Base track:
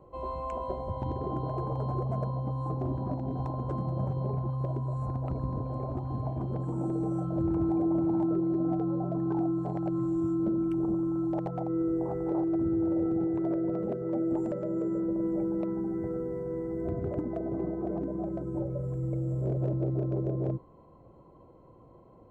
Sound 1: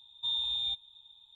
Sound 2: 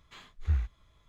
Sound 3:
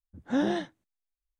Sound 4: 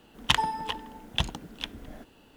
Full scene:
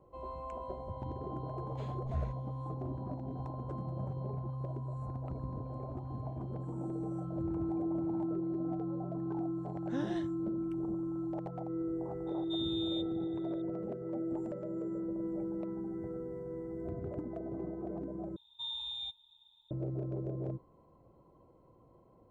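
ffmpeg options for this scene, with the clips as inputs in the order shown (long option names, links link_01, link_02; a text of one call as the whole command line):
ffmpeg -i bed.wav -i cue0.wav -i cue1.wav -i cue2.wav -filter_complex "[1:a]asplit=2[link_01][link_02];[0:a]volume=-7.5dB[link_03];[link_02]equalizer=frequency=920:width_type=o:width=0.36:gain=6.5[link_04];[link_03]asplit=2[link_05][link_06];[link_05]atrim=end=18.364[link_07];[link_04]atrim=end=1.35,asetpts=PTS-STARTPTS,volume=-8dB[link_08];[link_06]atrim=start=19.706[link_09];[2:a]atrim=end=1.08,asetpts=PTS-STARTPTS,volume=-9dB,afade=type=in:duration=0.004:curve=hsin,afade=type=out:start_time=1.076:duration=0.004:curve=hsin,adelay=1660[link_10];[3:a]atrim=end=1.39,asetpts=PTS-STARTPTS,volume=-11.5dB,afade=type=in:duration=0.004:curve=hsin,afade=type=out:start_time=1.386:duration=0.004:curve=hsin,adelay=9600[link_11];[link_01]atrim=end=1.35,asetpts=PTS-STARTPTS,volume=-9.5dB,afade=type=in:duration=0.004:curve=hsin,afade=type=out:start_time=1.346:duration=0.004:curve=hsin,adelay=12270[link_12];[link_07][link_08]acrossfade=duration=0.004:curve1=hsin:curve2=hsin[link_13];[link_13][link_09]acrossfade=duration=0.004:curve1=hsin:curve2=hsin[link_14];[link_14][link_10][link_11][link_12]amix=inputs=4:normalize=0" out.wav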